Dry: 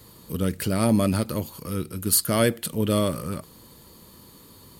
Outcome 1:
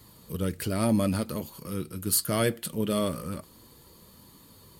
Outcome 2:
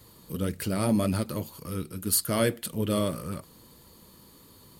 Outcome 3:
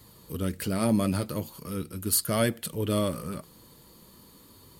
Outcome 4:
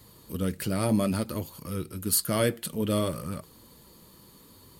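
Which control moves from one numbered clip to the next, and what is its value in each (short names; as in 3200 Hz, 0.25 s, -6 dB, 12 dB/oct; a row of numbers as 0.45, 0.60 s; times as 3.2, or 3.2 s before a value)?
flange, rate: 0.23, 1.8, 0.4, 0.61 Hz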